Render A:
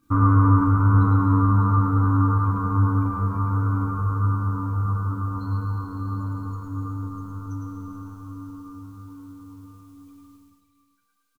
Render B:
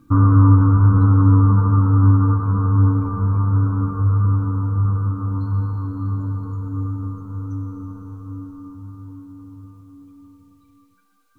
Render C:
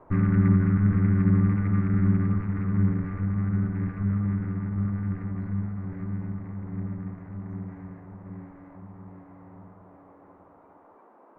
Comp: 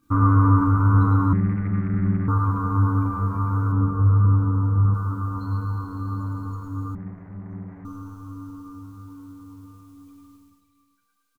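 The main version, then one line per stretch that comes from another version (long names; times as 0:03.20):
A
0:01.33–0:02.28: punch in from C
0:03.72–0:04.94: punch in from B
0:06.95–0:07.85: punch in from C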